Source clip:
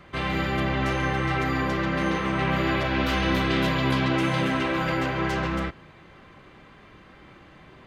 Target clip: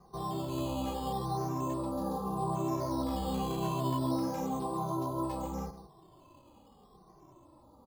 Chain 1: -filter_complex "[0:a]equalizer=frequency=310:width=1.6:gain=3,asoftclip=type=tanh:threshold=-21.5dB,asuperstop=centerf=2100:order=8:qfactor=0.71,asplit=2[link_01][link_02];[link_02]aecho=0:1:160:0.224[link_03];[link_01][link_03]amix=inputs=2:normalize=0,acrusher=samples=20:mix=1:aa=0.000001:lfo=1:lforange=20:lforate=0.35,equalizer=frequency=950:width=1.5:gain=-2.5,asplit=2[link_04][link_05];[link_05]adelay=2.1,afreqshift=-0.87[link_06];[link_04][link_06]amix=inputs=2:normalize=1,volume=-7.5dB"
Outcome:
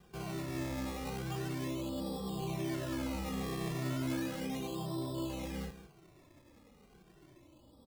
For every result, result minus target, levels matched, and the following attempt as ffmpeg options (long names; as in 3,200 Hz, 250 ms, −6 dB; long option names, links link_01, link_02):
soft clipping: distortion +10 dB; 1,000 Hz band −7.0 dB; sample-and-hold swept by an LFO: distortion +8 dB
-filter_complex "[0:a]equalizer=frequency=310:width=1.6:gain=3,asoftclip=type=tanh:threshold=-13.5dB,asuperstop=centerf=2100:order=8:qfactor=0.71,asplit=2[link_01][link_02];[link_02]aecho=0:1:160:0.224[link_03];[link_01][link_03]amix=inputs=2:normalize=0,acrusher=samples=20:mix=1:aa=0.000001:lfo=1:lforange=20:lforate=0.35,equalizer=frequency=950:width=1.5:gain=-2.5,asplit=2[link_04][link_05];[link_05]adelay=2.1,afreqshift=-0.87[link_06];[link_04][link_06]amix=inputs=2:normalize=1,volume=-7.5dB"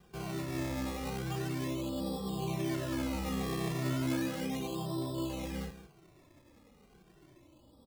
1,000 Hz band −7.0 dB; sample-and-hold swept by an LFO: distortion +8 dB
-filter_complex "[0:a]equalizer=frequency=310:width=1.6:gain=3,asoftclip=type=tanh:threshold=-13.5dB,asuperstop=centerf=2100:order=8:qfactor=0.71,asplit=2[link_01][link_02];[link_02]aecho=0:1:160:0.224[link_03];[link_01][link_03]amix=inputs=2:normalize=0,acrusher=samples=20:mix=1:aa=0.000001:lfo=1:lforange=20:lforate=0.35,equalizer=frequency=950:width=1.5:gain=8,asplit=2[link_04][link_05];[link_05]adelay=2.1,afreqshift=-0.87[link_06];[link_04][link_06]amix=inputs=2:normalize=1,volume=-7.5dB"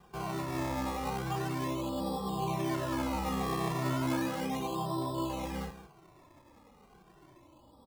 sample-and-hold swept by an LFO: distortion +8 dB
-filter_complex "[0:a]equalizer=frequency=310:width=1.6:gain=3,asoftclip=type=tanh:threshold=-13.5dB,asuperstop=centerf=2100:order=8:qfactor=0.71,asplit=2[link_01][link_02];[link_02]aecho=0:1:160:0.224[link_03];[link_01][link_03]amix=inputs=2:normalize=0,acrusher=samples=8:mix=1:aa=0.000001:lfo=1:lforange=8:lforate=0.35,equalizer=frequency=950:width=1.5:gain=8,asplit=2[link_04][link_05];[link_05]adelay=2.1,afreqshift=-0.87[link_06];[link_04][link_06]amix=inputs=2:normalize=1,volume=-7.5dB"